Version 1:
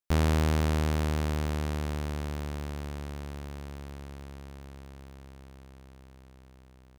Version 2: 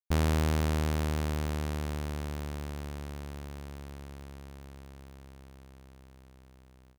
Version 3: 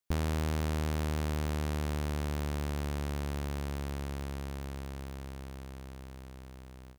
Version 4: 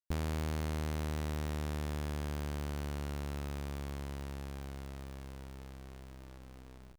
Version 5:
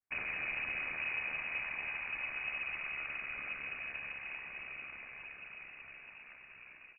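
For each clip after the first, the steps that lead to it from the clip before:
noise gate with hold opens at −51 dBFS; high-shelf EQ 9,400 Hz +4.5 dB; level −2 dB
downward compressor 4 to 1, threshold −40 dBFS, peak gain reduction 13.5 dB; level +8 dB
hold until the input has moved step −49.5 dBFS; level −4 dB
cochlear-implant simulation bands 16; voice inversion scrambler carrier 2,700 Hz; level +2 dB

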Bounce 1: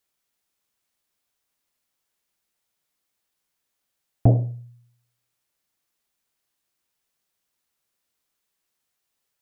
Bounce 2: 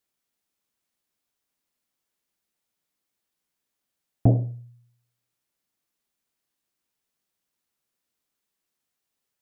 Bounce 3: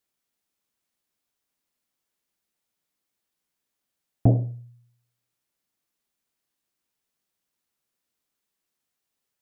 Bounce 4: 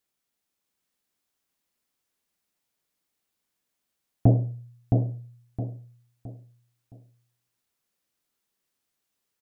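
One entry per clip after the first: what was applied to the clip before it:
parametric band 240 Hz +5 dB 1.5 octaves; level −4 dB
no processing that can be heard
repeating echo 666 ms, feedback 34%, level −4 dB

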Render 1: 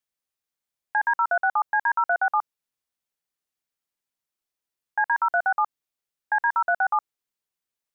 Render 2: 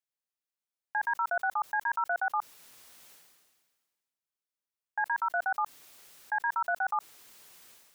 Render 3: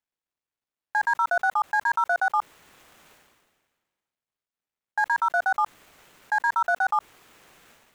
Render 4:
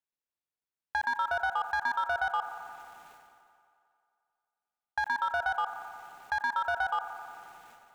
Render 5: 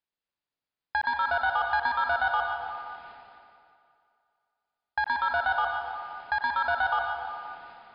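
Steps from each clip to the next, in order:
low-shelf EQ 150 Hz −7 dB; level that may fall only so fast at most 37 dB per second; level −7.5 dB
running median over 9 samples; level +7 dB
leveller curve on the samples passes 1; downward compressor, threshold −22 dBFS, peak gain reduction 5 dB; delay with a band-pass on its return 89 ms, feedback 78%, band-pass 820 Hz, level −12 dB; level −5 dB
linear-phase brick-wall low-pass 5,100 Hz; dense smooth reverb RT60 1.7 s, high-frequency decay 0.95×, pre-delay 90 ms, DRR 3 dB; level +3 dB

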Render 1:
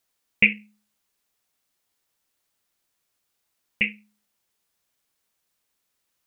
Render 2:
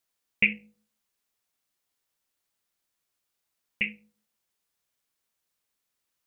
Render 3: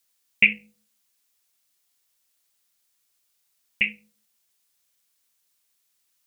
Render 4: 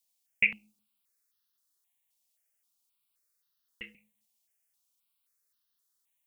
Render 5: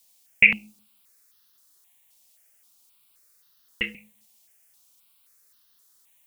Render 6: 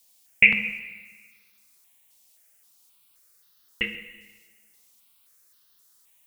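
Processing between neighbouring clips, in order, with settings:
hum removal 54.18 Hz, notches 17; level −5 dB
high-shelf EQ 2,300 Hz +11 dB
step-sequenced phaser 3.8 Hz 390–2,300 Hz; level −6 dB
boost into a limiter +17.5 dB; level −1 dB
convolution reverb RT60 1.4 s, pre-delay 5 ms, DRR 7.5 dB

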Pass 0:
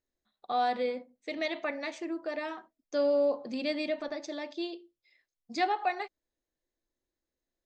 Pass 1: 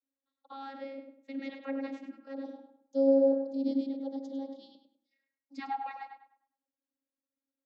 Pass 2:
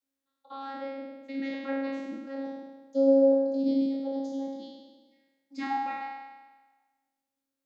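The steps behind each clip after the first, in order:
gain on a spectral selection 0:02.33–0:05.10, 920–3,300 Hz −18 dB; tape delay 101 ms, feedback 35%, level −5 dB, low-pass 2,700 Hz; channel vocoder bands 32, saw 272 Hz
peak hold with a decay on every bin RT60 1.29 s; level +2.5 dB

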